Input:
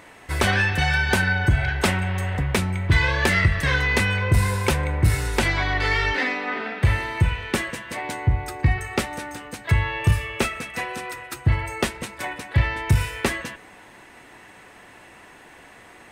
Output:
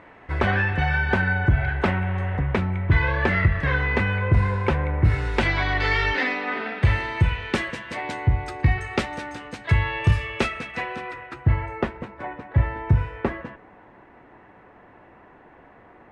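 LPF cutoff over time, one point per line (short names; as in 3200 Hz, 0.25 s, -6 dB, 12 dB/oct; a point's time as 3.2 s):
4.97 s 1900 Hz
5.67 s 4800 Hz
10.41 s 4800 Hz
11.2 s 2200 Hz
12.16 s 1200 Hz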